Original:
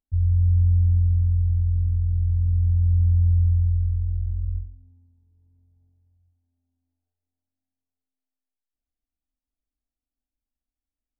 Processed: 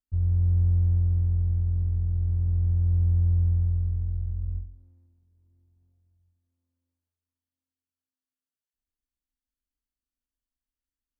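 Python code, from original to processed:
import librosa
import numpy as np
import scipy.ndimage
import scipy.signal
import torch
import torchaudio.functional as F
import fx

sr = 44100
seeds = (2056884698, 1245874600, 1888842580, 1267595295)

y = fx.lower_of_two(x, sr, delay_ms=0.66)
y = y * 10.0 ** (-3.5 / 20.0)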